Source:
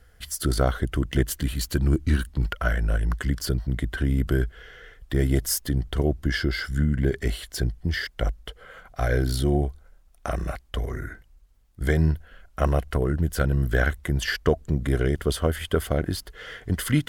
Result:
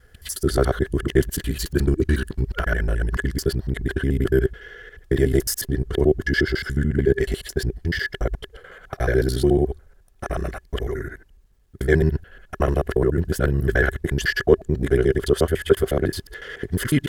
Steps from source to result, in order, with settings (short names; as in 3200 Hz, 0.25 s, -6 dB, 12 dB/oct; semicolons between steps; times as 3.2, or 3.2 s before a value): local time reversal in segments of 72 ms; small resonant body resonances 390/1700 Hz, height 11 dB; gain +1 dB